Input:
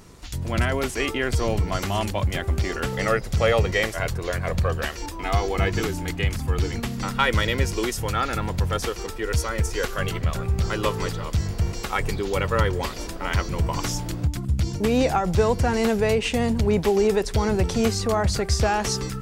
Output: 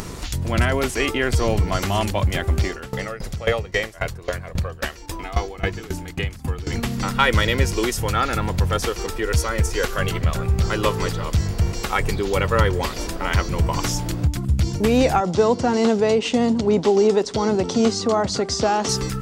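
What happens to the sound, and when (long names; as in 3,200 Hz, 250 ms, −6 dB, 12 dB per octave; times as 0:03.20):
0:02.66–0:06.67: tremolo with a ramp in dB decaying 3.7 Hz, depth 23 dB
0:15.20–0:18.89: loudspeaker in its box 190–7,300 Hz, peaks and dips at 260 Hz +6 dB, 1,700 Hz −7 dB, 2,400 Hz −7 dB
whole clip: upward compression, threshold −25 dBFS; level +3.5 dB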